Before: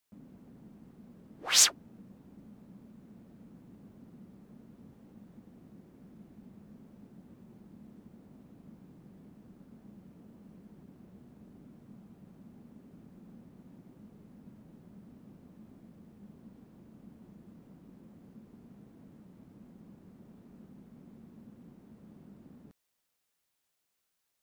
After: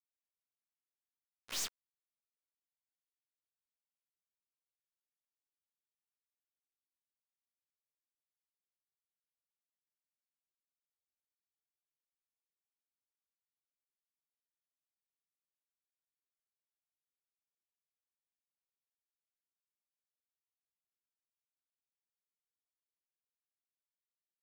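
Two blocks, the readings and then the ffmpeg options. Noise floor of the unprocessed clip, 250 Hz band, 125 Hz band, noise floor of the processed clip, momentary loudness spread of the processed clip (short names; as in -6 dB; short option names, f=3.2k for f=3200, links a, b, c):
-81 dBFS, -27.0 dB, -26.0 dB, under -85 dBFS, 3 LU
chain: -af "acrusher=bits=3:mix=0:aa=0.5,acompressor=threshold=-32dB:ratio=2.5,aeval=exprs='(tanh(79.4*val(0)+0.5)-tanh(0.5))/79.4':c=same,volume=3.5dB"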